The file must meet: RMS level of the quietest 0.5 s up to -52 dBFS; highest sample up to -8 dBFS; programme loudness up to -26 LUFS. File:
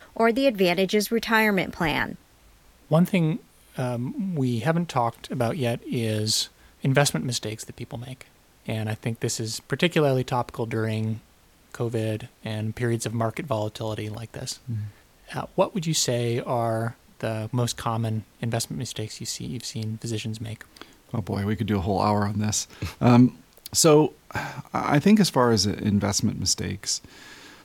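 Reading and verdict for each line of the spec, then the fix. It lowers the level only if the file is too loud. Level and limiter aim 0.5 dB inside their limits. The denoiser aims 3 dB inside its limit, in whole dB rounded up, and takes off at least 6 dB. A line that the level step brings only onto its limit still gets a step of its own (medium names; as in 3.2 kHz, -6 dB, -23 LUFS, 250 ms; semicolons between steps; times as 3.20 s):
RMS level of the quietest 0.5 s -57 dBFS: pass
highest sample -5.5 dBFS: fail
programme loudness -25.0 LUFS: fail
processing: trim -1.5 dB; peak limiter -8.5 dBFS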